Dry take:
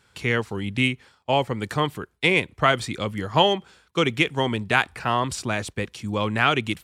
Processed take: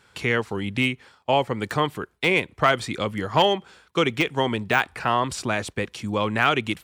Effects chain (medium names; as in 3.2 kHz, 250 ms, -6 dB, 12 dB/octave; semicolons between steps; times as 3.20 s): in parallel at -1 dB: compression, threshold -29 dBFS, peak gain reduction 16 dB; on the sum: overload inside the chain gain 7.5 dB; treble shelf 2.9 kHz -4.5 dB; de-esser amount 50%; bass shelf 200 Hz -6.5 dB